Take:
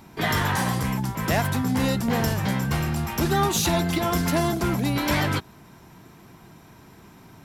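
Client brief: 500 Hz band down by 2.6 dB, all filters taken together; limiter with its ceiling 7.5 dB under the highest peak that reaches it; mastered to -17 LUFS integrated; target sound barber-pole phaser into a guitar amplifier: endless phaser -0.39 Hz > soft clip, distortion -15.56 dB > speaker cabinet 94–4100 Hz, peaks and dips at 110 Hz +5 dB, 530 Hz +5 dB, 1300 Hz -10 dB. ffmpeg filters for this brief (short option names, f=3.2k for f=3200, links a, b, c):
-filter_complex "[0:a]equalizer=f=500:t=o:g=-6,alimiter=limit=-16.5dB:level=0:latency=1,asplit=2[a][b];[b]afreqshift=-0.39[c];[a][c]amix=inputs=2:normalize=1,asoftclip=threshold=-25dB,highpass=94,equalizer=f=110:t=q:w=4:g=5,equalizer=f=530:t=q:w=4:g=5,equalizer=f=1.3k:t=q:w=4:g=-10,lowpass=f=4.1k:w=0.5412,lowpass=f=4.1k:w=1.3066,volume=15.5dB"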